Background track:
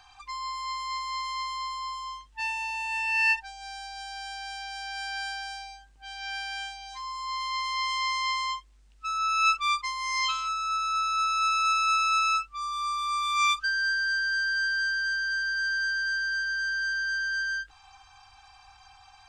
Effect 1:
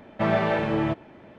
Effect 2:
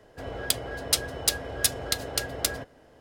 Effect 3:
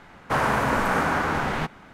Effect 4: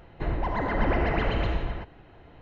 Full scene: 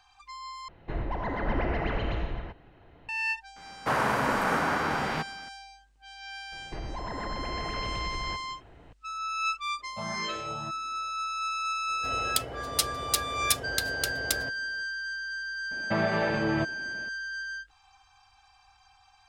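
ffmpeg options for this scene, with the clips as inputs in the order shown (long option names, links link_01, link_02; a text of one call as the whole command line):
ffmpeg -i bed.wav -i cue0.wav -i cue1.wav -i cue2.wav -i cue3.wav -filter_complex "[4:a]asplit=2[link_01][link_02];[1:a]asplit=2[link_03][link_04];[0:a]volume=-6.5dB[link_05];[3:a]lowshelf=frequency=69:gain=-12[link_06];[link_02]acompressor=threshold=-30dB:ratio=6:attack=3.2:release=140:knee=1:detection=peak[link_07];[link_03]asplit=2[link_08][link_09];[link_09]afreqshift=1.7[link_10];[link_08][link_10]amix=inputs=2:normalize=1[link_11];[link_04]alimiter=limit=-17.5dB:level=0:latency=1:release=159[link_12];[link_05]asplit=2[link_13][link_14];[link_13]atrim=end=0.684[link_15];[link_01]atrim=end=2.41,asetpts=PTS-STARTPTS,volume=-4dB[link_16];[link_14]atrim=start=3.086[link_17];[link_06]atrim=end=1.93,asetpts=PTS-STARTPTS,volume=-3.5dB,afade=type=in:duration=0.004:curve=hsin,afade=type=out:start_time=1.926:duration=0.004:curve=hsin,adelay=3560[link_18];[link_07]atrim=end=2.41,asetpts=PTS-STARTPTS,volume=-2dB,afade=type=in:duration=0.004:curve=hsin,afade=type=out:start_time=2.406:duration=0.004:curve=hsin,adelay=6520[link_19];[link_11]atrim=end=1.38,asetpts=PTS-STARTPTS,volume=-12.5dB,afade=type=in:duration=0.05,afade=type=out:start_time=1.33:duration=0.05,adelay=9770[link_20];[2:a]atrim=end=3,asetpts=PTS-STARTPTS,volume=-2.5dB,afade=type=in:duration=0.05,afade=type=out:start_time=2.95:duration=0.05,adelay=523026S[link_21];[link_12]atrim=end=1.38,asetpts=PTS-STARTPTS,volume=-1dB,afade=type=in:duration=0.004:curve=hsin,afade=type=out:start_time=1.376:duration=0.004:curve=hsin,adelay=15710[link_22];[link_15][link_16]acrossfade=duration=0.004:curve1=hsin:curve2=hsin[link_23];[link_23][link_17]acrossfade=duration=0.004:curve1=hsin:curve2=hsin[link_24];[link_24][link_18][link_19][link_20][link_21][link_22]amix=inputs=6:normalize=0" out.wav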